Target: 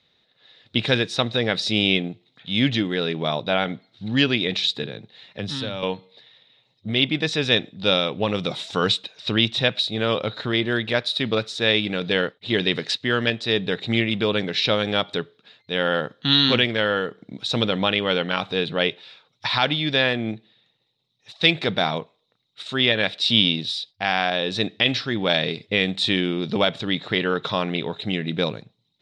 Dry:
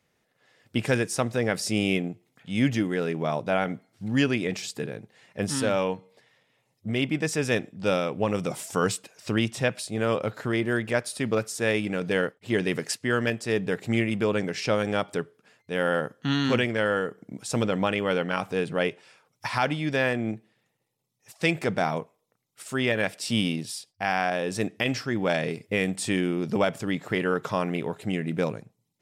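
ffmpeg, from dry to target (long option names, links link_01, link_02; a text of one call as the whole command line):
ffmpeg -i in.wav -filter_complex "[0:a]asettb=1/sr,asplit=3[link_01][link_02][link_03];[link_01]atrim=end=4.834[link_04];[link_02]atrim=start=4.83:end=5.83,asetpts=PTS-STARTPTS,afade=type=in:duration=0.004:curve=qsin,afade=type=out:start_time=0.996:duration=0.004:curve=qsin,acrossover=split=160[link_05][link_06];[link_06]acompressor=threshold=-32dB:ratio=5[link_07];[link_05][link_07]amix=inputs=2:normalize=0[link_08];[link_03]atrim=start=5.826[link_09];[link_04][link_08]acrossfade=duration=0.004:curve1=hsin:curve2=qsin[link_10];[link_10][link_09]acrossfade=duration=0.004:curve1=qsin:curve2=hsin,lowpass=frequency=3800:width_type=q:width=12,volume=2dB" out.wav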